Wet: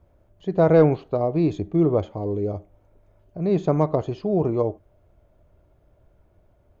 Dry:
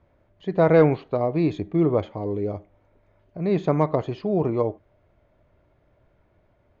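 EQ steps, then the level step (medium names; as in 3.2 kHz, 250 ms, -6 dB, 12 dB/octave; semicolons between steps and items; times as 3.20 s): graphic EQ 125/250/500/1000/2000/4000 Hz -5/-6/-4/-6/-12/-7 dB; +7.5 dB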